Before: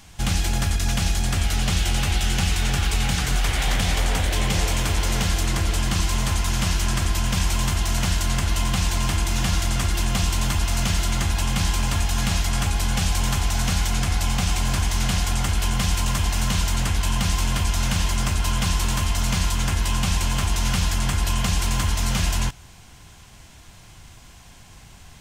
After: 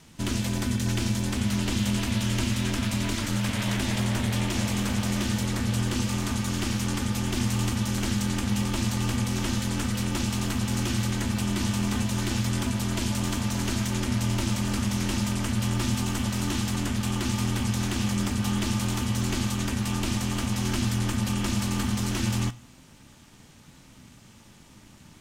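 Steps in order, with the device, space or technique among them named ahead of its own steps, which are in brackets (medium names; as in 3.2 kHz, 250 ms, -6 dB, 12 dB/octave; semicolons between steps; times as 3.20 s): alien voice (ring modulator 160 Hz; flange 0.3 Hz, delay 6.5 ms, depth 3.7 ms, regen +84%); trim +1.5 dB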